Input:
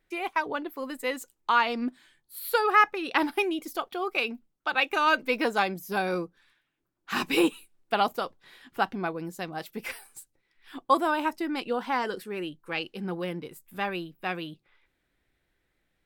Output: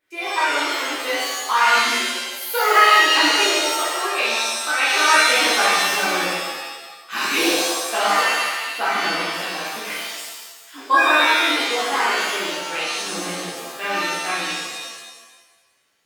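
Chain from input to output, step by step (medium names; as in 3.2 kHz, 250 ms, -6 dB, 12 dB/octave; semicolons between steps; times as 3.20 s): high-pass 640 Hz 6 dB/octave; pitch-shifted reverb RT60 1.2 s, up +7 st, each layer -2 dB, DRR -10 dB; trim -2 dB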